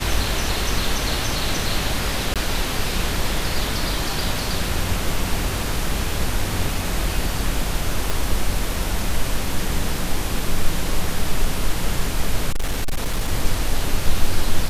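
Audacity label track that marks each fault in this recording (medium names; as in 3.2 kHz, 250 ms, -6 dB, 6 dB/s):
2.340000	2.360000	dropout 17 ms
8.100000	8.100000	pop
12.500000	13.290000	clipped -16.5 dBFS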